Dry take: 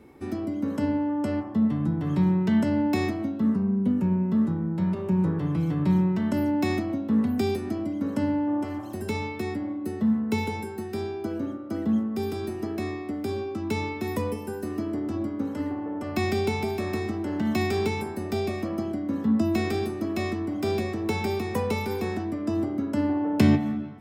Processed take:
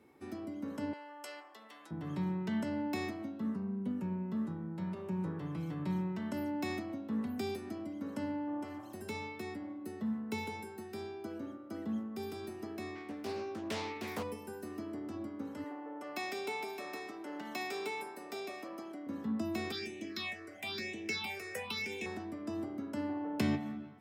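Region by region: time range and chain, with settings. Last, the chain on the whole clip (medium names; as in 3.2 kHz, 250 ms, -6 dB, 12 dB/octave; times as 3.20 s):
0.93–1.91 s: high-pass 410 Hz 24 dB/octave + tilt shelf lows -9 dB, about 1.4 kHz
12.95–14.23 s: doubling 18 ms -7 dB + dynamic bell 3.3 kHz, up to +5 dB, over -48 dBFS, Q 0.79 + loudspeaker Doppler distortion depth 0.5 ms
15.64–19.07 s: high-pass 350 Hz + comb 6.9 ms, depth 38%
19.72–22.06 s: frequency weighting D + phase shifter stages 6, 1 Hz, lowest notch 230–1300 Hz
whole clip: high-pass 87 Hz; bass shelf 480 Hz -6 dB; trim -8 dB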